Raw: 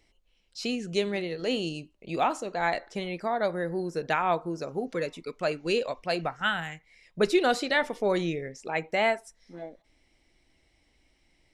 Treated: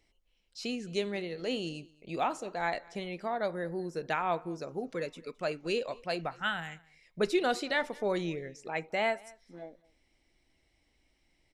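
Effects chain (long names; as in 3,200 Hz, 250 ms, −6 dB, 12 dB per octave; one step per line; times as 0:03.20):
single-tap delay 214 ms −24 dB
level −5 dB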